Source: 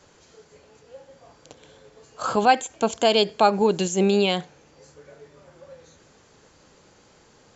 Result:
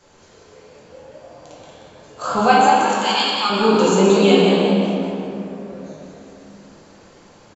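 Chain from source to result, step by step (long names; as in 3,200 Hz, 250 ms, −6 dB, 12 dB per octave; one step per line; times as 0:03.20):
0:02.52–0:03.50: Butterworth high-pass 980 Hz 48 dB per octave
on a send: echo with shifted repeats 181 ms, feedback 45%, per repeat +72 Hz, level −6 dB
on the sum: rectangular room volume 120 cubic metres, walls hard, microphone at 0.81 metres
level −1 dB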